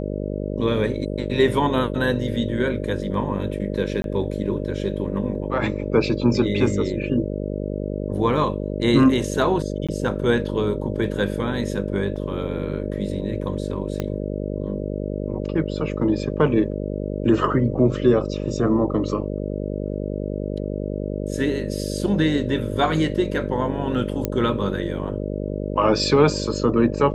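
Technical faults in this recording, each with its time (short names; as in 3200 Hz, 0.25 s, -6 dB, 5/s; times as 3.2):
buzz 50 Hz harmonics 12 -27 dBFS
4.02–4.04 gap 22 ms
9.87–9.89 gap 16 ms
12.16 gap 3.2 ms
14 pop -12 dBFS
24.25 pop -8 dBFS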